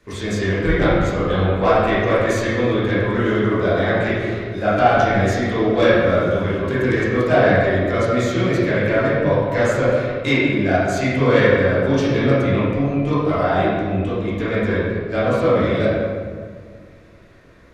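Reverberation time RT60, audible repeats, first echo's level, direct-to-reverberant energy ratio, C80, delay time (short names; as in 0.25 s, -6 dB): 1.9 s, none, none, -11.5 dB, -0.5 dB, none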